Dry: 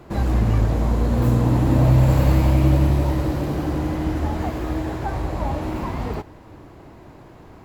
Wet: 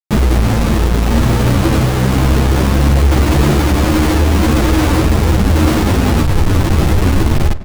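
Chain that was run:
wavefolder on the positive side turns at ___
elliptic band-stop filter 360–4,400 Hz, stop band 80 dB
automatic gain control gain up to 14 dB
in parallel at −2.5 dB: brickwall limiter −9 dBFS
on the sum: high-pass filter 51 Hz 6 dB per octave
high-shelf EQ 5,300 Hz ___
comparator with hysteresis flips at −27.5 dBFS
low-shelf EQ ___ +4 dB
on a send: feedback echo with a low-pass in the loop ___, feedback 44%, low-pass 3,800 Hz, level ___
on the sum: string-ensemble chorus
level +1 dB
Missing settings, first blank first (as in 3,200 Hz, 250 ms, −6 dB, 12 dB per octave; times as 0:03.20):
−11 dBFS, −7 dB, 130 Hz, 99 ms, −15.5 dB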